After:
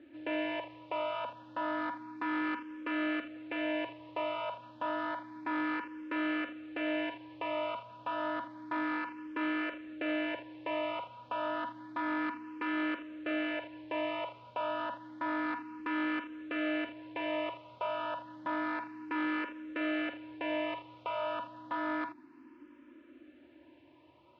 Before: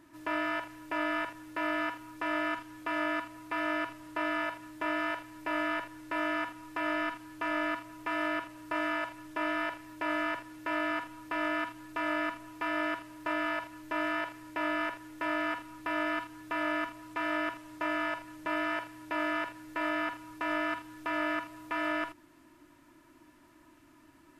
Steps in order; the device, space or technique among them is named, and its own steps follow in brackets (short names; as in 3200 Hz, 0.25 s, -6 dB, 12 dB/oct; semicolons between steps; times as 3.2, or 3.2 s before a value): notch 650 Hz, Q 12; barber-pole phaser into a guitar amplifier (endless phaser +0.3 Hz; soft clip -28.5 dBFS, distortion -19 dB; speaker cabinet 100–3500 Hz, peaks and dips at 100 Hz -4 dB, 170 Hz -9 dB, 250 Hz +6 dB, 540 Hz +8 dB, 1300 Hz -5 dB, 1900 Hz -6 dB); gain +3.5 dB